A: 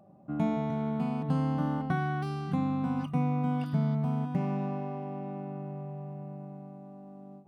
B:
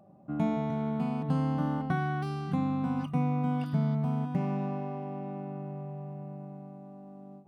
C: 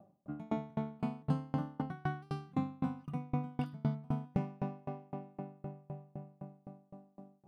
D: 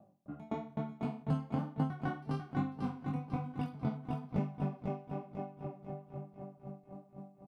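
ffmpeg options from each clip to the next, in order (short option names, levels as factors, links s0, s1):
-af anull
-af "aeval=exprs='val(0)*pow(10,-32*if(lt(mod(3.9*n/s,1),2*abs(3.9)/1000),1-mod(3.9*n/s,1)/(2*abs(3.9)/1000),(mod(3.9*n/s,1)-2*abs(3.9)/1000)/(1-2*abs(3.9)/1000))/20)':c=same,volume=1.12"
-filter_complex "[0:a]flanger=delay=19:depth=6.9:speed=1.1,asplit=2[s0][s1];[s1]aecho=0:1:495|990|1485|1980|2475:0.562|0.236|0.0992|0.0417|0.0175[s2];[s0][s2]amix=inputs=2:normalize=0,volume=1.26"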